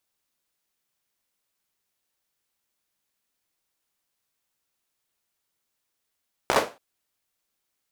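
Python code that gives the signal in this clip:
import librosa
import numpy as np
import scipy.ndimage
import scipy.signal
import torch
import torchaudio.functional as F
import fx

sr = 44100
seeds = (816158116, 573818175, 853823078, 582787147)

y = fx.drum_clap(sr, seeds[0], length_s=0.28, bursts=5, spacing_ms=15, hz=590.0, decay_s=0.29)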